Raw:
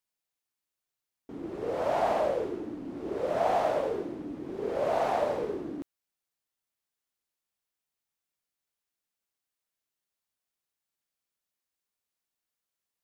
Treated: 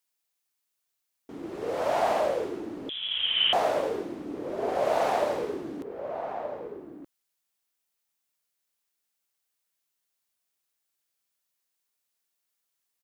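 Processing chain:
spectral tilt +1.5 dB per octave
slap from a distant wall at 210 metres, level −7 dB
0:02.89–0:03.53: voice inversion scrambler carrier 3,700 Hz
level +2.5 dB

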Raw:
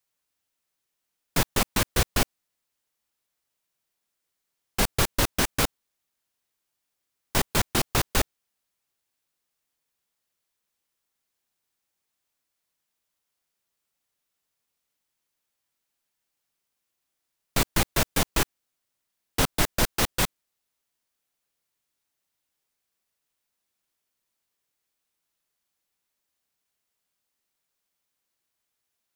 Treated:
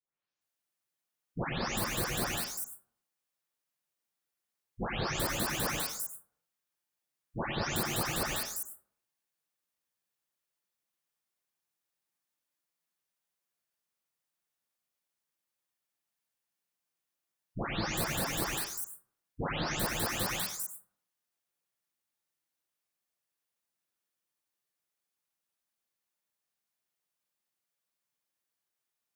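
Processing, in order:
every frequency bin delayed by itself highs late, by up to 410 ms
high-pass filter 88 Hz 6 dB per octave
dense smooth reverb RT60 0.65 s, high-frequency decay 0.3×, pre-delay 85 ms, DRR 4 dB
level −6.5 dB

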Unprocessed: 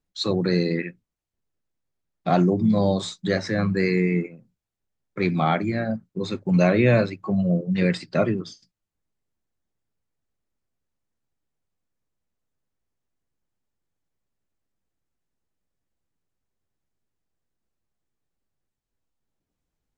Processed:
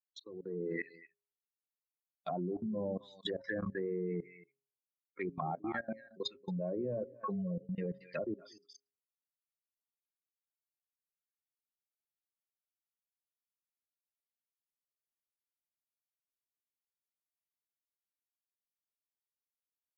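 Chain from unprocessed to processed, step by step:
spectral dynamics exaggerated over time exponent 2
low-pass filter 1,700 Hz 6 dB per octave
low-shelf EQ 130 Hz −4.5 dB
single-tap delay 233 ms −21 dB
treble cut that deepens with the level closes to 620 Hz, closed at −26 dBFS
first difference
treble cut that deepens with the level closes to 500 Hz, closed at −50.5 dBFS
output level in coarse steps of 21 dB
hum removal 136.4 Hz, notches 4
automatic gain control gain up to 15.5 dB
level +11.5 dB

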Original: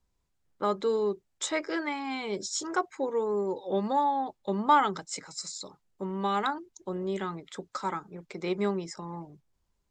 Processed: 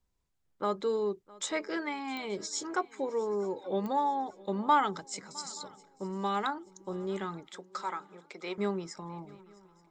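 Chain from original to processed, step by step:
0:07.53–0:08.58: meter weighting curve A
feedback echo with a long and a short gap by turns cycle 879 ms, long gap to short 3 to 1, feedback 41%, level −22.5 dB
digital clicks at 0:02.17/0:03.86, −22 dBFS
level −3 dB

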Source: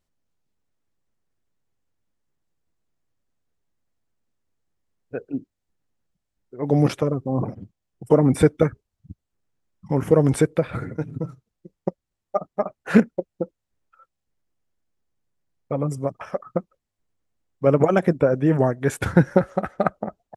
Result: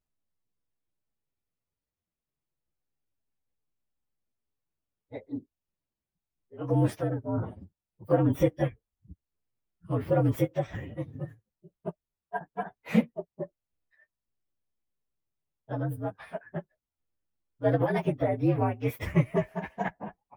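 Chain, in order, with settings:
partials spread apart or drawn together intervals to 118%
dynamic equaliser 3,900 Hz, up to −6 dB, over −55 dBFS, Q 2.8
level −5 dB

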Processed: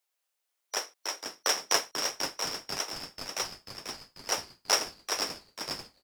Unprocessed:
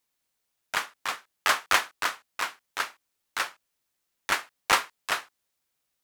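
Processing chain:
band-splitting scrambler in four parts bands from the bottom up 2341
high-pass filter 420 Hz 24 dB per octave
echo with shifted repeats 490 ms, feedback 61%, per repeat −140 Hz, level −7 dB
level −3 dB

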